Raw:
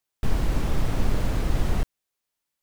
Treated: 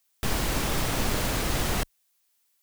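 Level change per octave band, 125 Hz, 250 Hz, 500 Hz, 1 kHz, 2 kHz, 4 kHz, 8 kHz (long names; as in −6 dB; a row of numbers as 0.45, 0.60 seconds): −4.0, −0.5, +2.0, +4.5, +7.0, +9.5, +12.0 decibels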